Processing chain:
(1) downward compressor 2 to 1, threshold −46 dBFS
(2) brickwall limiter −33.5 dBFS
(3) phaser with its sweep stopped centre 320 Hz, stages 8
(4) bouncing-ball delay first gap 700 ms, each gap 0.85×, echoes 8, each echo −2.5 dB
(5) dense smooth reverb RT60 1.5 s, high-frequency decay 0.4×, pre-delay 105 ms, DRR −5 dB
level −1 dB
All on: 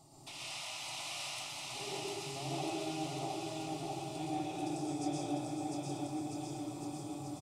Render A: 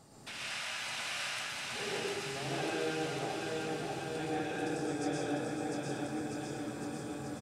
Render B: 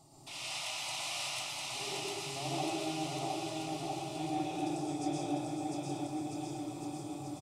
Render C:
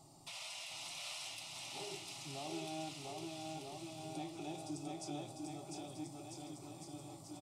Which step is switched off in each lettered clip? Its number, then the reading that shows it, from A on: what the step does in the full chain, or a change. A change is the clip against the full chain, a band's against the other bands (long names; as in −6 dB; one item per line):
3, change in integrated loudness +3.0 LU
2, 125 Hz band −2.0 dB
5, echo-to-direct ratio 9.5 dB to 1.0 dB